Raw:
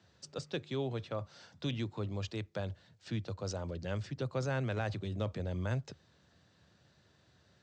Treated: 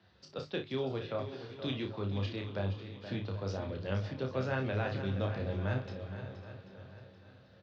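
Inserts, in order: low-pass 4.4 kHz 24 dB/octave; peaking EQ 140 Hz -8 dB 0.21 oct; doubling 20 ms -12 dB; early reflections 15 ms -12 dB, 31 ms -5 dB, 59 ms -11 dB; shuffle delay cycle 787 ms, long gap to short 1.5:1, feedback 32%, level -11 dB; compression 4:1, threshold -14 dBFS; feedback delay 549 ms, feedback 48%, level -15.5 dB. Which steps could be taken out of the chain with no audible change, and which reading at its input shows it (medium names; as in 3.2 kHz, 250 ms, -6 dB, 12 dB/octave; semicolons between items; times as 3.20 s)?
compression, threshold -14 dBFS: peak at its input -20.5 dBFS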